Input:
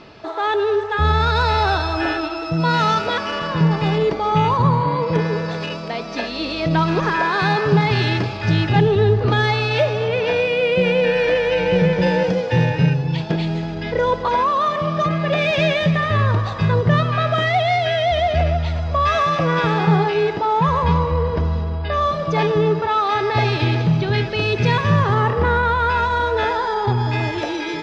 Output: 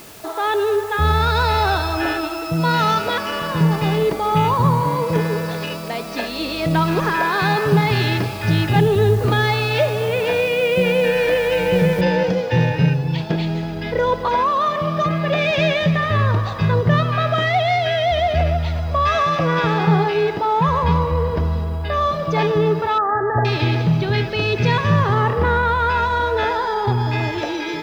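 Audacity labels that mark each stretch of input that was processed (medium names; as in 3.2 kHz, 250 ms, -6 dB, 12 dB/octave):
12.010000	12.010000	noise floor step -43 dB -60 dB
22.980000	23.450000	brick-wall FIR low-pass 2 kHz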